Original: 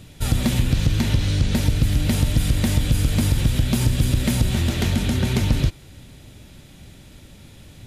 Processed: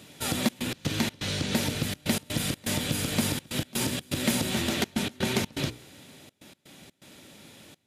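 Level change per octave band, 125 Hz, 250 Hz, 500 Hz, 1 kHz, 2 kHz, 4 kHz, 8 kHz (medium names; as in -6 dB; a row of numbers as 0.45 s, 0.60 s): -15.0 dB, -6.0 dB, -2.0 dB, -1.5 dB, -1.5 dB, -1.5 dB, -1.0 dB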